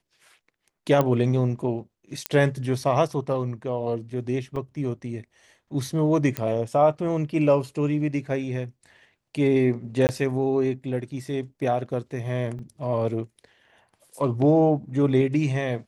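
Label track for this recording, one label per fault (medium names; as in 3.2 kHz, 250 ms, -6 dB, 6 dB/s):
1.010000	1.010000	pop -10 dBFS
2.260000	2.260000	pop -8 dBFS
4.560000	4.560000	dropout 3.9 ms
6.370000	6.370000	pop -11 dBFS
10.070000	10.090000	dropout 19 ms
12.590000	12.590000	dropout 2 ms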